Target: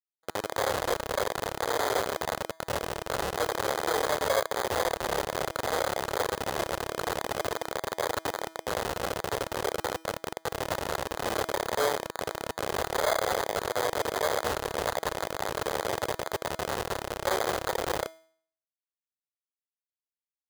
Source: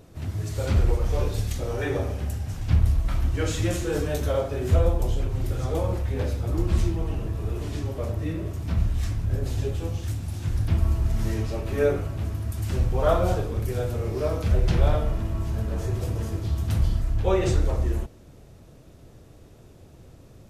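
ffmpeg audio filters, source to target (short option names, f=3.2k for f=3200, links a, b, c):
-filter_complex "[0:a]equalizer=f=3.6k:t=o:w=0.84:g=-12,aeval=exprs='0.376*(cos(1*acos(clip(val(0)/0.376,-1,1)))-cos(1*PI/2))+0.0473*(cos(4*acos(clip(val(0)/0.376,-1,1)))-cos(4*PI/2))':c=same,asplit=2[a][b];[b]aecho=0:1:87:0.282[c];[a][c]amix=inputs=2:normalize=0,acompressor=threshold=-21dB:ratio=5,acrusher=bits=3:mix=0:aa=0.000001,bandreject=f=323.5:t=h:w=4,bandreject=f=647:t=h:w=4,bandreject=f=970.5:t=h:w=4,bandreject=f=1.294k:t=h:w=4,bandreject=f=1.6175k:t=h:w=4,bandreject=f=1.941k:t=h:w=4,bandreject=f=2.2645k:t=h:w=4,bandreject=f=2.588k:t=h:w=4,bandreject=f=2.9115k:t=h:w=4,bandreject=f=3.235k:t=h:w=4,bandreject=f=3.5585k:t=h:w=4,bandreject=f=3.882k:t=h:w=4,bandreject=f=4.2055k:t=h:w=4,acrusher=samples=16:mix=1:aa=0.000001,highpass=f=170:p=1,lowshelf=f=350:t=q:w=1.5:g=-10,bandreject=f=2.3k:w=9.1"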